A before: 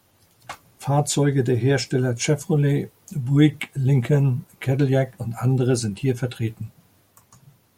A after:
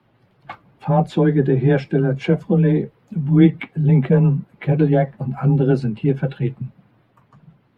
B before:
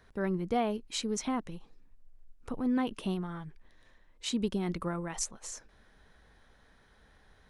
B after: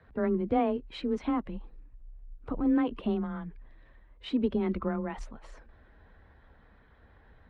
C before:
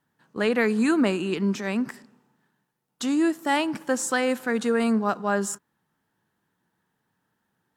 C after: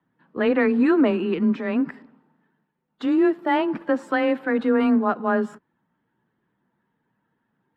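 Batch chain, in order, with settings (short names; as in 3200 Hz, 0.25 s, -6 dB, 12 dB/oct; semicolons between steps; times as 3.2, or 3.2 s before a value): bin magnitudes rounded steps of 15 dB; air absorption 440 m; frequency shift +19 Hz; gain +4.5 dB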